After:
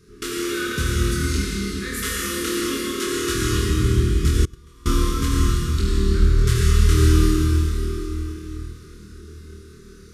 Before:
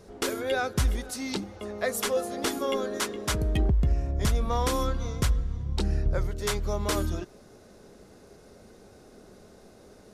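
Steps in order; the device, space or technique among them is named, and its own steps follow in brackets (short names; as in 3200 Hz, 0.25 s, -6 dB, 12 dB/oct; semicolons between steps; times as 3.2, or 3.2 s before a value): tunnel (flutter echo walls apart 4.4 m, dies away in 0.46 s; reverb RT60 4.2 s, pre-delay 68 ms, DRR -5.5 dB); 4.45–4.86 gate -9 dBFS, range -28 dB; elliptic band-stop 410–1200 Hz, stop band 60 dB; gain -1 dB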